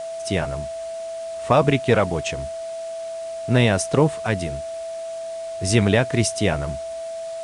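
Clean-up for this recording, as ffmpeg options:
-af "bandreject=f=660:w=30,afwtdn=0.0063"

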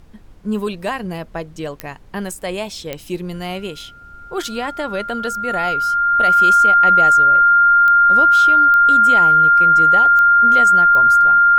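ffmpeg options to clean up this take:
-af "adeclick=t=4,bandreject=f=1400:w=30,agate=range=0.0891:threshold=0.0282"

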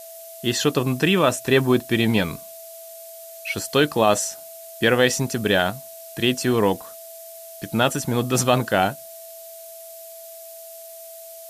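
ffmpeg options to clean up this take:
-af "bandreject=f=660:w=30,afftdn=nr=26:nf=-40"

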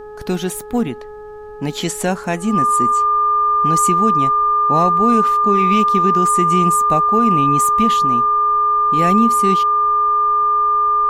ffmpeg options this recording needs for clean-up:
-af "bandreject=f=422.4:t=h:w=4,bandreject=f=844.8:t=h:w=4,bandreject=f=1267.2:t=h:w=4,bandreject=f=1689.6:t=h:w=4,bandreject=f=1200:w=30,agate=range=0.0891:threshold=0.0708"

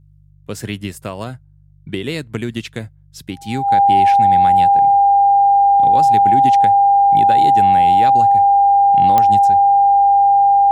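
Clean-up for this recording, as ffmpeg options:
-af "adeclick=t=4,bandreject=f=49.3:t=h:w=4,bandreject=f=98.6:t=h:w=4,bandreject=f=147.9:t=h:w=4,bandreject=f=800:w=30"

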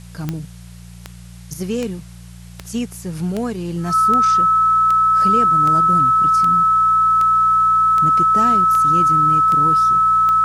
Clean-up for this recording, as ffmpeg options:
-af "adeclick=t=4,bandreject=f=58.8:t=h:w=4,bandreject=f=117.6:t=h:w=4,bandreject=f=176.4:t=h:w=4,bandreject=f=1300:w=30,agate=range=0.0891:threshold=0.0316"

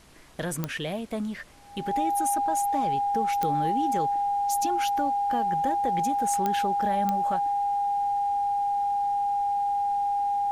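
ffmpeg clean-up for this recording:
-af "adeclick=t=4,bandreject=f=810:w=30,agate=range=0.0891:threshold=0.0562"

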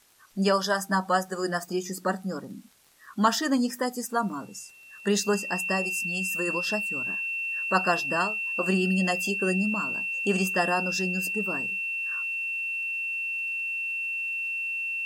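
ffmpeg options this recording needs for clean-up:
-af "adeclick=t=4,bandreject=f=2700:w=30,agate=range=0.0891:threshold=0.0126"

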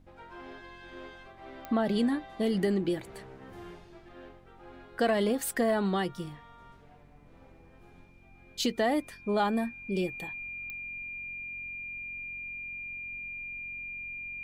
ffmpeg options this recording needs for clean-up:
-af "adeclick=t=4,bandreject=f=45.1:t=h:w=4,bandreject=f=90.2:t=h:w=4,bandreject=f=135.3:t=h:w=4,bandreject=f=180.4:t=h:w=4,bandreject=f=225.5:t=h:w=4,bandreject=f=270.6:t=h:w=4,bandreject=f=2400:w=30,agate=range=0.0891:threshold=0.00501"

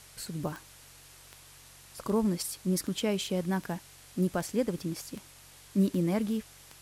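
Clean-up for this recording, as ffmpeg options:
-af "adeclick=t=4,bandreject=f=46.3:t=h:w=4,bandreject=f=92.6:t=h:w=4,bandreject=f=138.9:t=h:w=4,afwtdn=0.0025"

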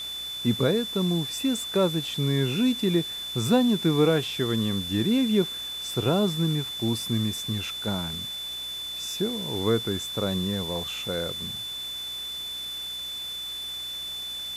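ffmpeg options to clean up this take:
-af "bandreject=f=62.3:t=h:w=4,bandreject=f=124.6:t=h:w=4,bandreject=f=186.9:t=h:w=4,bandreject=f=249.2:t=h:w=4,bandreject=f=311.5:t=h:w=4,bandreject=f=373.8:t=h:w=4,bandreject=f=3500:w=30,afwtdn=0.0063"

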